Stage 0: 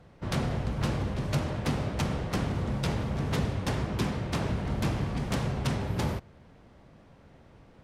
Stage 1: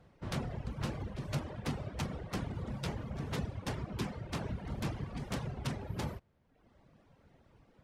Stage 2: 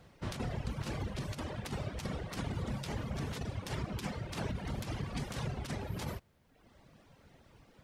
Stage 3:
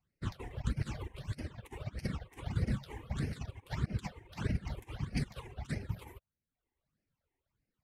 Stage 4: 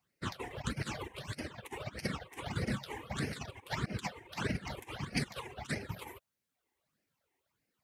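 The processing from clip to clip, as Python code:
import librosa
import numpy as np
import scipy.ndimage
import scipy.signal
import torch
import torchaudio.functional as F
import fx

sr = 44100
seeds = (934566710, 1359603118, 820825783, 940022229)

y1 = fx.dereverb_blind(x, sr, rt60_s=0.94)
y1 = y1 * 10.0 ** (-6.5 / 20.0)
y2 = fx.high_shelf(y1, sr, hz=2300.0, db=9.0)
y2 = fx.over_compress(y2, sr, threshold_db=-37.0, ratio=-0.5)
y2 = y2 * 10.0 ** (1.0 / 20.0)
y3 = fx.phaser_stages(y2, sr, stages=8, low_hz=170.0, high_hz=1100.0, hz=1.6, feedback_pct=25)
y3 = fx.upward_expand(y3, sr, threshold_db=-54.0, expansion=2.5)
y3 = y3 * 10.0 ** (7.0 / 20.0)
y4 = fx.highpass(y3, sr, hz=420.0, slope=6)
y4 = y4 * 10.0 ** (7.5 / 20.0)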